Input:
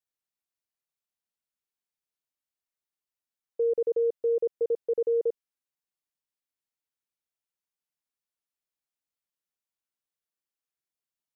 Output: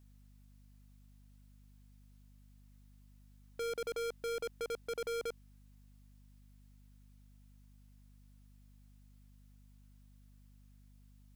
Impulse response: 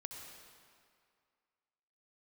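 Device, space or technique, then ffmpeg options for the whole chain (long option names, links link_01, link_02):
valve amplifier with mains hum: -af "aeval=exprs='(tanh(355*val(0)+0.05)-tanh(0.05))/355':channel_layout=same,aeval=exprs='val(0)+0.0002*(sin(2*PI*50*n/s)+sin(2*PI*2*50*n/s)/2+sin(2*PI*3*50*n/s)/3+sin(2*PI*4*50*n/s)/4+sin(2*PI*5*50*n/s)/5)':channel_layout=same,volume=14.5dB"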